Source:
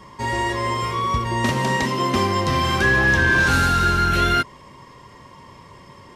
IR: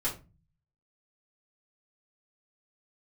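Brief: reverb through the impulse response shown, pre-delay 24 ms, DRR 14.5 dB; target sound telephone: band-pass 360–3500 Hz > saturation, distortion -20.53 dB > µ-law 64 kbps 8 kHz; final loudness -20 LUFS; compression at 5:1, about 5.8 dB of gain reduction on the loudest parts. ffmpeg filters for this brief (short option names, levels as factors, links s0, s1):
-filter_complex "[0:a]acompressor=threshold=0.1:ratio=5,asplit=2[s0][s1];[1:a]atrim=start_sample=2205,adelay=24[s2];[s1][s2]afir=irnorm=-1:irlink=0,volume=0.1[s3];[s0][s3]amix=inputs=2:normalize=0,highpass=360,lowpass=3500,asoftclip=threshold=0.119,volume=2" -ar 8000 -c:a pcm_mulaw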